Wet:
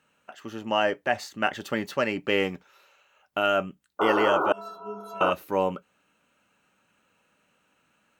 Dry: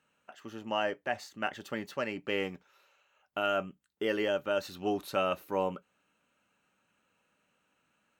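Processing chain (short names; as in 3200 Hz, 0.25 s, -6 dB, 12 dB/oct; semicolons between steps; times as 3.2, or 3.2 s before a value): vocal rider 2 s; 3.99–5.31 painted sound noise 280–1500 Hz -31 dBFS; 4.52–5.21 metallic resonator 200 Hz, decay 0.73 s, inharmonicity 0.03; gain +6.5 dB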